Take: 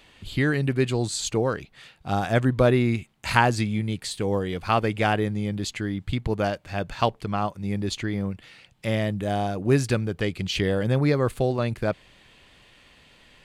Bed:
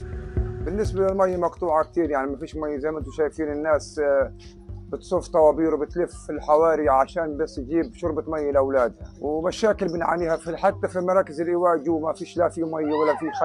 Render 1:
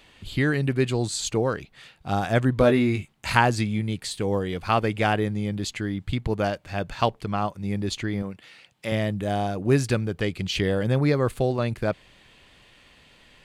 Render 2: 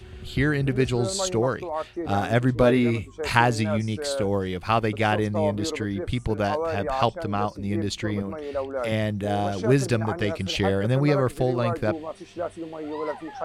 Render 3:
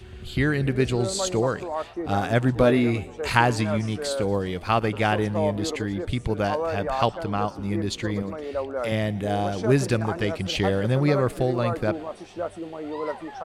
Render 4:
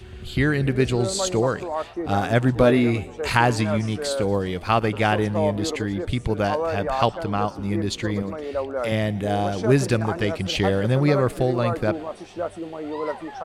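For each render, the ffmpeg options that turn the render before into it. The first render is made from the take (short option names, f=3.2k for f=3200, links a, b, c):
-filter_complex "[0:a]asettb=1/sr,asplit=3[a][b][c];[a]atrim=end=2.584[d];[b]atrim=start=2.58:end=3.13,asetpts=PTS-STARTPTS,afade=t=in:d=0.004:c=qsin,afade=t=out:st=0.546:d=0.004:c=qsin,asplit=2[e][f];[f]adelay=20,volume=-6dB[g];[e][g]amix=inputs=2:normalize=0,atrim=end_sample=24255[h];[c]atrim=start=3.126[i];[d][h]acrossfade=d=0.004:c1=hsin:c2=qsin[j];[j][i]acrossfade=d=0.004:c1=qsin:c2=hsin,asettb=1/sr,asplit=3[k][l][m];[k]atrim=end=8.224[n];[l]atrim=start=8.22:end=8.92,asetpts=PTS-STARTPTS,afade=t=in:d=0.004:c=qsin,afade=t=out:st=0.696:d=0.004:c=qsin,highpass=f=270:p=1[o];[m]atrim=start=8.916[p];[n][o]acrossfade=d=0.004:c1=hsin:c2=qsin[q];[q][p]acrossfade=d=0.004:c1=qsin:c2=hsin"
-filter_complex "[1:a]volume=-9dB[a];[0:a][a]amix=inputs=2:normalize=0"
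-filter_complex "[0:a]asplit=6[a][b][c][d][e][f];[b]adelay=117,afreqshift=61,volume=-22dB[g];[c]adelay=234,afreqshift=122,volume=-26dB[h];[d]adelay=351,afreqshift=183,volume=-30dB[i];[e]adelay=468,afreqshift=244,volume=-34dB[j];[f]adelay=585,afreqshift=305,volume=-38.1dB[k];[a][g][h][i][j][k]amix=inputs=6:normalize=0"
-af "volume=2dB,alimiter=limit=-3dB:level=0:latency=1"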